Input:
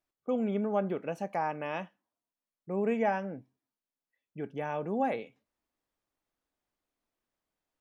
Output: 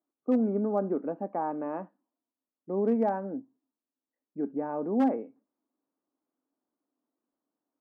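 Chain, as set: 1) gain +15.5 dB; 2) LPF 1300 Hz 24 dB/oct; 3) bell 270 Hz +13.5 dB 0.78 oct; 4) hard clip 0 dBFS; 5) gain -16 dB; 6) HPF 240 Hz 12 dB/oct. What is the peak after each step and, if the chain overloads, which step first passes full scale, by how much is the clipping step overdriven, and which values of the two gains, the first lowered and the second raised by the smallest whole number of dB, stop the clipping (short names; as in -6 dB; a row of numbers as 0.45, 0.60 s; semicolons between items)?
-0.5, -2.0, +4.0, 0.0, -16.0, -15.5 dBFS; step 3, 4.0 dB; step 1 +11.5 dB, step 5 -12 dB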